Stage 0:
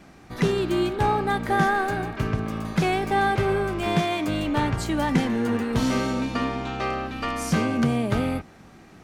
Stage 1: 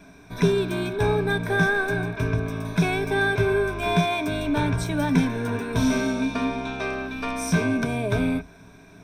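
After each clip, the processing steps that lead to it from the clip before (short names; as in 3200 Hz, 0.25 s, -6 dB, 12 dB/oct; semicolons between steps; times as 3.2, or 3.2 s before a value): ripple EQ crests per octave 1.6, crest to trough 14 dB; gain -2 dB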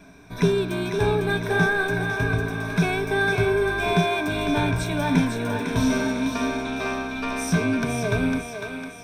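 thinning echo 0.503 s, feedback 50%, high-pass 470 Hz, level -5 dB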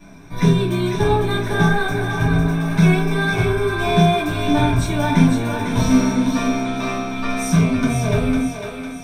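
reverb RT60 0.25 s, pre-delay 3 ms, DRR -5.5 dB; gain -3.5 dB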